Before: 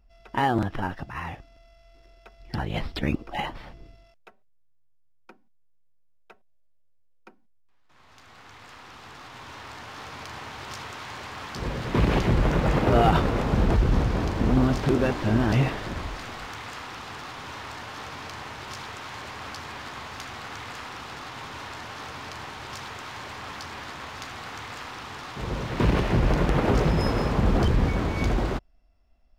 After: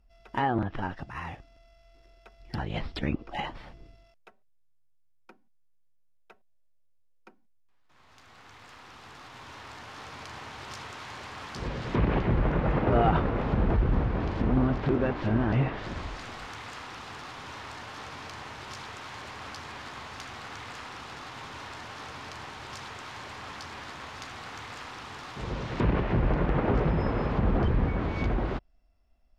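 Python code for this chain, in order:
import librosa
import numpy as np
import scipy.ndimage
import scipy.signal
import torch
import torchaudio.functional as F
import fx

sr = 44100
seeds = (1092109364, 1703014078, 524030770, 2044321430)

y = fx.env_lowpass_down(x, sr, base_hz=2300.0, full_db=-19.5)
y = y * librosa.db_to_amplitude(-3.5)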